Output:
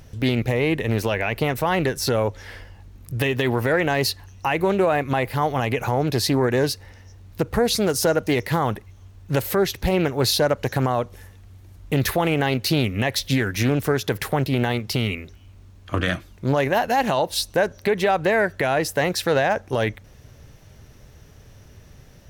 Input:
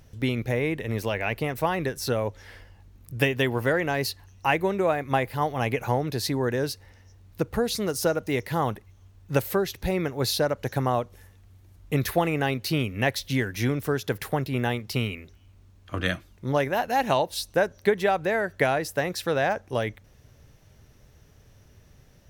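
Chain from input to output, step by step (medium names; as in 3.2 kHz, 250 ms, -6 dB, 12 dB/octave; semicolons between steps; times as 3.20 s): peak limiter -18 dBFS, peak gain reduction 10.5 dB; loudspeaker Doppler distortion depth 0.23 ms; trim +7.5 dB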